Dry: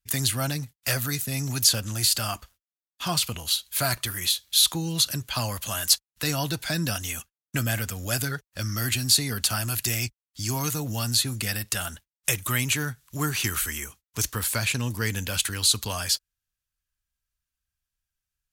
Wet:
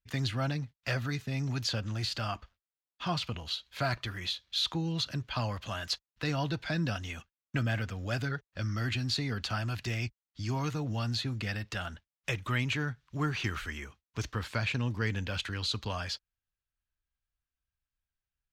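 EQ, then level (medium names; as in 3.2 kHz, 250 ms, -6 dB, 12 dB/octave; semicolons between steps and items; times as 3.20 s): distance through air 220 m; -3.0 dB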